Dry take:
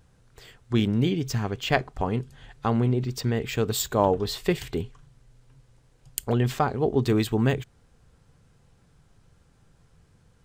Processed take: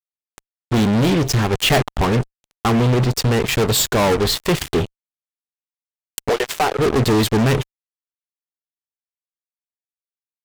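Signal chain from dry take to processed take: 6.29–6.79 s: Chebyshev high-pass 410 Hz, order 5; fuzz box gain 33 dB, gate -36 dBFS; 1.53–1.97 s: waveshaping leveller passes 2

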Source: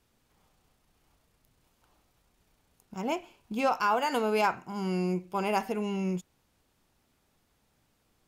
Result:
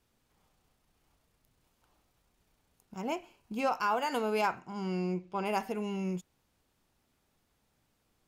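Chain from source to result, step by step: 3.00–3.87 s: band-stop 3.5 kHz, Q 12; 4.59–5.44 s: low-pass 8.1 kHz -> 4.6 kHz 12 dB/octave; trim -3.5 dB

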